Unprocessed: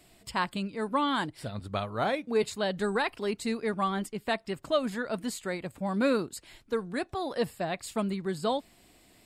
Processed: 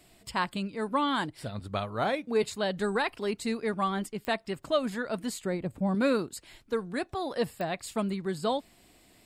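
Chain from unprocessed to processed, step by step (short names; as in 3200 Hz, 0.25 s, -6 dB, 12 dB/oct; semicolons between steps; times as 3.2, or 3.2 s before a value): 5.45–5.95 tilt shelf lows +6.5 dB, about 700 Hz; pops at 4.25/7.61, -23 dBFS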